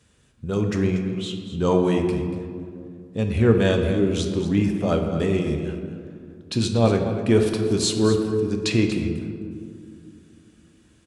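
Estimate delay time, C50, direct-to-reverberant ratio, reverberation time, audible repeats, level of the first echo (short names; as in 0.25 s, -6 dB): 0.237 s, 5.5 dB, 3.0 dB, 2.4 s, 1, -12.0 dB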